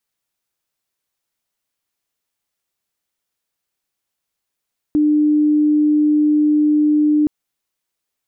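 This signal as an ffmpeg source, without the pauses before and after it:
-f lavfi -i "sine=f=300:d=2.32:r=44100,volume=7.06dB"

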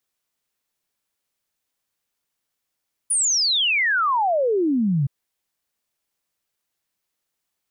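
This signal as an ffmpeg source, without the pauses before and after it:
-f lavfi -i "aevalsrc='0.141*clip(min(t,1.97-t)/0.01,0,1)*sin(2*PI*10000*1.97/log(130/10000)*(exp(log(130/10000)*t/1.97)-1))':d=1.97:s=44100"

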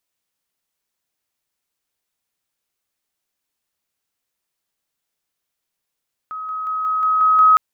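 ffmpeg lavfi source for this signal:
-f lavfi -i "aevalsrc='pow(10,(-26+3*floor(t/0.18))/20)*sin(2*PI*1270*t)':d=1.26:s=44100"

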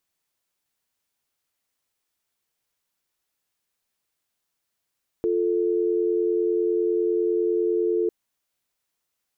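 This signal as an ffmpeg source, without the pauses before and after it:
-f lavfi -i "aevalsrc='0.075*(sin(2*PI*350*t)+sin(2*PI*440*t))':d=2.85:s=44100"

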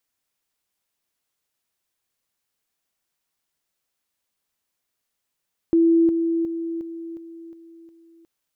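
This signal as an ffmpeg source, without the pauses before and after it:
-f lavfi -i "aevalsrc='pow(10,(-13-6*floor(t/0.36))/20)*sin(2*PI*332*t)':d=2.52:s=44100"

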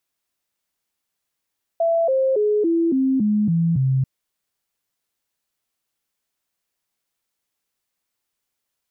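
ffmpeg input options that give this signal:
-f lavfi -i "aevalsrc='0.168*clip(min(mod(t,0.28),0.28-mod(t,0.28))/0.005,0,1)*sin(2*PI*667*pow(2,-floor(t/0.28)/3)*mod(t,0.28))':d=2.24:s=44100"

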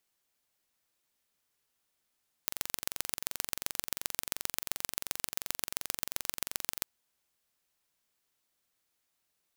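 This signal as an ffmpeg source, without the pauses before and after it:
-f lavfi -i "aevalsrc='0.75*eq(mod(n,1934),0)*(0.5+0.5*eq(mod(n,5802),0))':d=4.36:s=44100"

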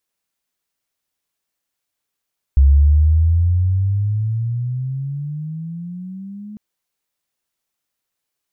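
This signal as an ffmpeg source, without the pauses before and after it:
-f lavfi -i "aevalsrc='pow(10,(-6.5-24*t/4)/20)*sin(2*PI*67.2*4/(20*log(2)/12)*(exp(20*log(2)/12*t/4)-1))':d=4:s=44100"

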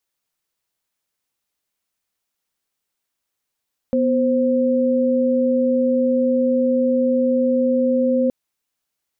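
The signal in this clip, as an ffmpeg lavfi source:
-f lavfi -i "aevalsrc='0.133*(sin(2*PI*246.94*t)+sin(2*PI*523.25*t))':d=4.37:s=44100"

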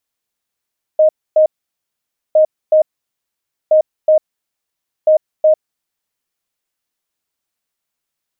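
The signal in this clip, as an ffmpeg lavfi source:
-f lavfi -i "aevalsrc='0.501*sin(2*PI*622*t)*clip(min(mod(mod(t,1.36),0.37),0.1-mod(mod(t,1.36),0.37))/0.005,0,1)*lt(mod(t,1.36),0.74)':d=5.44:s=44100"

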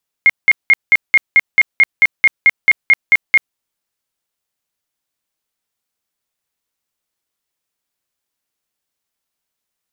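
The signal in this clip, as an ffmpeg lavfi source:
-f lavfi -i "aevalsrc='0.596*sin(2*PI*2140*mod(t,0.22))*lt(mod(t,0.22),76/2140)':d=3.3:s=44100"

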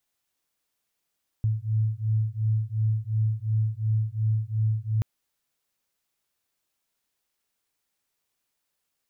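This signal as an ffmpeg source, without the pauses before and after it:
-f lavfi -i "aevalsrc='0.0531*(sin(2*PI*108*t)+sin(2*PI*110.8*t))':d=3.58:s=44100"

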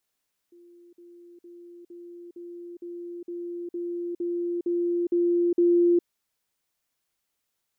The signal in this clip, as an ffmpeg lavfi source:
-f lavfi -i "aevalsrc='pow(10,(-49.5+3*floor(t/0.46))/20)*sin(2*PI*347*t)*clip(min(mod(t,0.46),0.41-mod(t,0.46))/0.005,0,1)':d=5.52:s=44100"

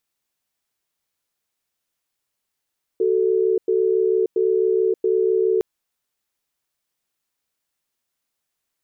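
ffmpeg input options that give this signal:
-f lavfi -i "aevalsrc='0.119*(sin(2*PI*375*t)+sin(2*PI*441*t))*clip(min(mod(t,0.68),0.58-mod(t,0.68))/0.005,0,1)':d=2.61:s=44100"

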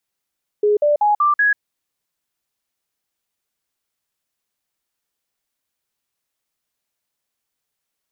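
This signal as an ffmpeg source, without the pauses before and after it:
-f lavfi -i "aevalsrc='0.251*clip(min(mod(t,0.19),0.14-mod(t,0.19))/0.005,0,1)*sin(2*PI*417*pow(2,floor(t/0.19)/2)*mod(t,0.19))':d=0.95:s=44100"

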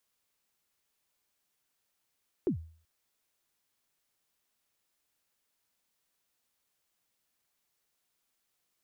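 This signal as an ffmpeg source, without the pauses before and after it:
-f lavfi -i "aevalsrc='0.075*pow(10,-3*t/0.46)*sin(2*PI*(420*0.102/log(81/420)*(exp(log(81/420)*min(t,0.102)/0.102)-1)+81*max(t-0.102,0)))':d=0.38:s=44100"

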